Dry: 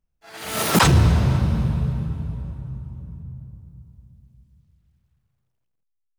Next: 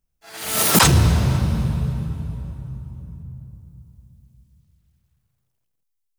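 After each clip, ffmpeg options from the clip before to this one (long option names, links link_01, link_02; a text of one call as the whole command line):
ffmpeg -i in.wav -af "highshelf=frequency=4900:gain=10" out.wav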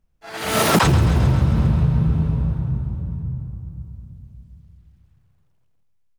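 ffmpeg -i in.wav -filter_complex "[0:a]lowpass=frequency=1800:poles=1,asplit=2[link_01][link_02];[link_02]aecho=0:1:134|268|402|536|670|804|938:0.266|0.16|0.0958|0.0575|0.0345|0.0207|0.0124[link_03];[link_01][link_03]amix=inputs=2:normalize=0,acompressor=threshold=-22dB:ratio=6,volume=9dB" out.wav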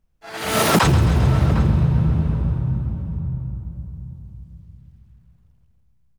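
ffmpeg -i in.wav -filter_complex "[0:a]asplit=2[link_01][link_02];[link_02]adelay=755,lowpass=frequency=1700:poles=1,volume=-11.5dB,asplit=2[link_03][link_04];[link_04]adelay=755,lowpass=frequency=1700:poles=1,volume=0.18[link_05];[link_01][link_03][link_05]amix=inputs=3:normalize=0" out.wav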